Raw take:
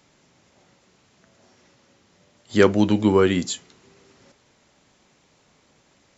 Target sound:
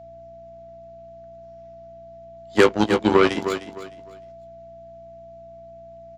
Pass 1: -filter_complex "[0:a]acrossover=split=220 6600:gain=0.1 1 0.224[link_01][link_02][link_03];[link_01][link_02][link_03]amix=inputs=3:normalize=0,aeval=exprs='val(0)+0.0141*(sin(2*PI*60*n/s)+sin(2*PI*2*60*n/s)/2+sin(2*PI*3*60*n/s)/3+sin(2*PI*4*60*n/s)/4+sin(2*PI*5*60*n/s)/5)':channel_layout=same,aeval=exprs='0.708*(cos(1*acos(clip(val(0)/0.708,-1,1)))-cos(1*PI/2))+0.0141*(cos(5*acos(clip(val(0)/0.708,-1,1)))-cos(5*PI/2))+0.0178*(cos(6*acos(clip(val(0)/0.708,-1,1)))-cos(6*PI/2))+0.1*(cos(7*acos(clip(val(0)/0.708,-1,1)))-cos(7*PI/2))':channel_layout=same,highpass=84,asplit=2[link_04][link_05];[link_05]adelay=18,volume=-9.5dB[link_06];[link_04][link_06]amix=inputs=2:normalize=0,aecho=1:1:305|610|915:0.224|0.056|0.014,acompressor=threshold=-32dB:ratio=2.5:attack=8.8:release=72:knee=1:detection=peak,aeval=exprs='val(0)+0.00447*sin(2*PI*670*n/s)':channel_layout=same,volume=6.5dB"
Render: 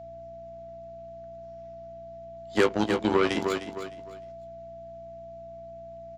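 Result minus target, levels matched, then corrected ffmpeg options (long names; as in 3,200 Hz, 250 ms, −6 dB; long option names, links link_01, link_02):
downward compressor: peak gain reduction +7 dB
-filter_complex "[0:a]acrossover=split=220 6600:gain=0.1 1 0.224[link_01][link_02][link_03];[link_01][link_02][link_03]amix=inputs=3:normalize=0,aeval=exprs='val(0)+0.0141*(sin(2*PI*60*n/s)+sin(2*PI*2*60*n/s)/2+sin(2*PI*3*60*n/s)/3+sin(2*PI*4*60*n/s)/4+sin(2*PI*5*60*n/s)/5)':channel_layout=same,aeval=exprs='0.708*(cos(1*acos(clip(val(0)/0.708,-1,1)))-cos(1*PI/2))+0.0141*(cos(5*acos(clip(val(0)/0.708,-1,1)))-cos(5*PI/2))+0.0178*(cos(6*acos(clip(val(0)/0.708,-1,1)))-cos(6*PI/2))+0.1*(cos(7*acos(clip(val(0)/0.708,-1,1)))-cos(7*PI/2))':channel_layout=same,highpass=84,asplit=2[link_04][link_05];[link_05]adelay=18,volume=-9.5dB[link_06];[link_04][link_06]amix=inputs=2:normalize=0,aecho=1:1:305|610|915:0.224|0.056|0.014,acompressor=threshold=-20dB:ratio=2.5:attack=8.8:release=72:knee=1:detection=peak,aeval=exprs='val(0)+0.00447*sin(2*PI*670*n/s)':channel_layout=same,volume=6.5dB"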